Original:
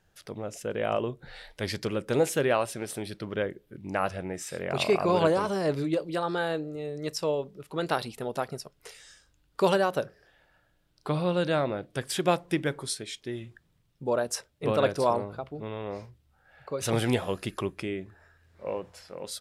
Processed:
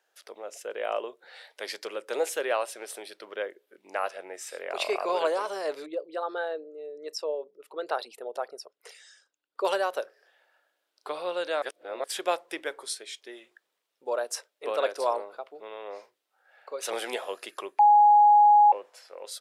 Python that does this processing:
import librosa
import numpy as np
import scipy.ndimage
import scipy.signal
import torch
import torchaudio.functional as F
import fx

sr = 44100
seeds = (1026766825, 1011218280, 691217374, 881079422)

y = fx.envelope_sharpen(x, sr, power=1.5, at=(5.86, 9.65))
y = fx.edit(y, sr, fx.reverse_span(start_s=11.62, length_s=0.42),
    fx.bleep(start_s=17.79, length_s=0.93, hz=831.0, db=-12.0), tone=tone)
y = scipy.signal.sosfilt(scipy.signal.butter(4, 440.0, 'highpass', fs=sr, output='sos'), y)
y = F.gain(torch.from_numpy(y), -1.5).numpy()